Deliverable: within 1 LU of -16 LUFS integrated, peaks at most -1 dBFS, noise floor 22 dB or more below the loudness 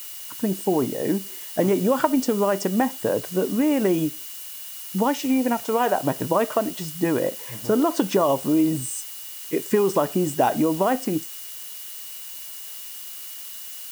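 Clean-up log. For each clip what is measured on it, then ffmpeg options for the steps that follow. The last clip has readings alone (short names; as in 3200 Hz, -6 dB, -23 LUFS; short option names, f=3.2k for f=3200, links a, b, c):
steady tone 2900 Hz; tone level -48 dBFS; noise floor -37 dBFS; noise floor target -46 dBFS; loudness -24.0 LUFS; peak -4.5 dBFS; loudness target -16.0 LUFS
-> -af "bandreject=f=2.9k:w=30"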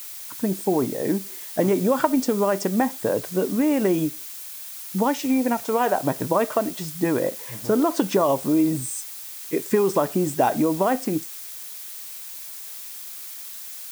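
steady tone none; noise floor -37 dBFS; noise floor target -46 dBFS
-> -af "afftdn=nr=9:nf=-37"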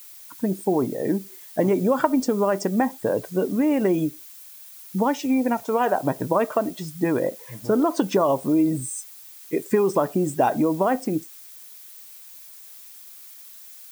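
noise floor -44 dBFS; noise floor target -46 dBFS
-> -af "afftdn=nr=6:nf=-44"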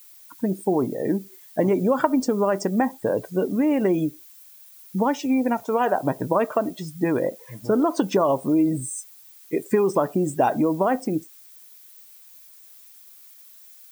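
noise floor -49 dBFS; loudness -23.5 LUFS; peak -4.5 dBFS; loudness target -16.0 LUFS
-> -af "volume=7.5dB,alimiter=limit=-1dB:level=0:latency=1"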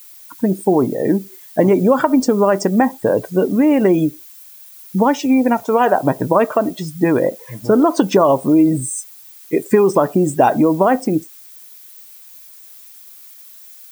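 loudness -16.0 LUFS; peak -1.0 dBFS; noise floor -41 dBFS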